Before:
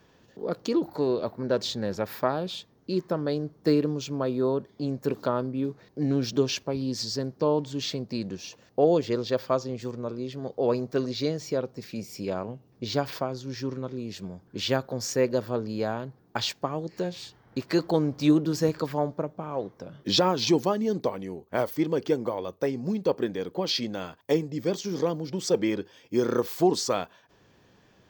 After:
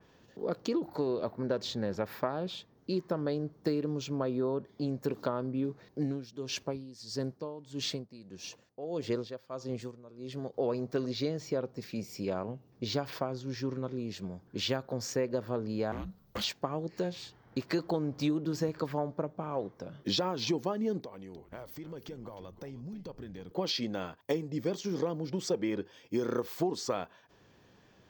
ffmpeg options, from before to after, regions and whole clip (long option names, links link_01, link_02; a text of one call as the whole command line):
ffmpeg -i in.wav -filter_complex "[0:a]asettb=1/sr,asplit=3[link_01][link_02][link_03];[link_01]atrim=end=6.004[link_04];[link_02]atrim=start=6:end=10.54,asetpts=PTS-STARTPTS,afade=type=in:duration=0.004:curve=qsin,afade=type=out:start_time=4.536:duration=0.004:curve=qsin,equalizer=frequency=9400:width_type=o:width=0.35:gain=13,aeval=exprs='val(0)*pow(10,-18*(0.5-0.5*cos(2*PI*1.6*n/s))/20)':channel_layout=same[link_05];[link_03]atrim=start=10.536[link_06];[link_04][link_05]acrossfade=duration=0.004:curve1=hsin:curve2=qsin[link_07];[link_07][link_06]acrossfade=duration=0.004:curve1=qsin:curve2=hsin,asettb=1/sr,asplit=3[link_08][link_09][link_10];[link_08]atrim=end=15.924[link_11];[link_09]atrim=start=15.92:end=16.44,asetpts=PTS-STARTPTS,afade=type=in:duration=0.004:curve=qsin,afade=type=out:start_time=0.516:duration=0.004:curve=qsin,aemphasis=mode=production:type=cd,afreqshift=-320,asoftclip=type=hard:threshold=-30dB[link_12];[link_10]atrim=start=16.436[link_13];[link_11][link_12]acrossfade=duration=0.004:curve1=hsin:curve2=qsin[link_14];[link_14][link_13]acrossfade=duration=0.004:curve1=qsin:curve2=hsin,asettb=1/sr,asplit=3[link_15][link_16][link_17];[link_15]atrim=end=21.004[link_18];[link_16]atrim=start=21:end=23.51,asetpts=PTS-STARTPTS,afade=type=in:duration=0.004:curve=qsin,afade=type=out:start_time=2.506:duration=0.004:curve=qsin,asubboost=boost=7:cutoff=160,acompressor=threshold=-41dB:ratio=4:attack=3.2:release=140:knee=1:detection=peak,asplit=4[link_19][link_20][link_21][link_22];[link_20]adelay=308,afreqshift=-130,volume=-13.5dB[link_23];[link_21]adelay=616,afreqshift=-260,volume=-23.7dB[link_24];[link_22]adelay=924,afreqshift=-390,volume=-33.8dB[link_25];[link_19][link_23][link_24][link_25]amix=inputs=4:normalize=0,atrim=end_sample=110691[link_26];[link_17]atrim=start=23.506[link_27];[link_18][link_26]acrossfade=duration=0.004:curve1=hsin:curve2=qsin[link_28];[link_28][link_27]acrossfade=duration=0.004:curve1=qsin:curve2=hsin,equalizer=frequency=10000:width_type=o:width=0.29:gain=-7.5,acompressor=threshold=-25dB:ratio=6,adynamicequalizer=threshold=0.00355:dfrequency=3000:dqfactor=0.7:tfrequency=3000:tqfactor=0.7:attack=5:release=100:ratio=0.375:range=3.5:mode=cutabove:tftype=highshelf,volume=-2dB" out.wav